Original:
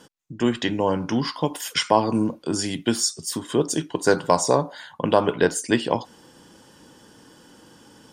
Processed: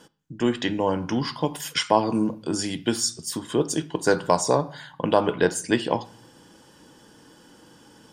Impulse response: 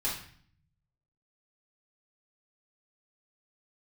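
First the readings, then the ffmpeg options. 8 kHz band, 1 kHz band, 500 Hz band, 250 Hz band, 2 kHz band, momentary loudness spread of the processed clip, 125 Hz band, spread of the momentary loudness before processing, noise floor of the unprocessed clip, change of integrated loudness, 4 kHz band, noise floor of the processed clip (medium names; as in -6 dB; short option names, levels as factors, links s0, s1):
-2.0 dB, -1.5 dB, -1.5 dB, -1.5 dB, -1.5 dB, 7 LU, -1.5 dB, 7 LU, -52 dBFS, -1.5 dB, -1.5 dB, -54 dBFS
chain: -filter_complex "[0:a]asplit=2[s0][s1];[1:a]atrim=start_sample=2205,lowpass=4900[s2];[s1][s2]afir=irnorm=-1:irlink=0,volume=0.112[s3];[s0][s3]amix=inputs=2:normalize=0,volume=0.794"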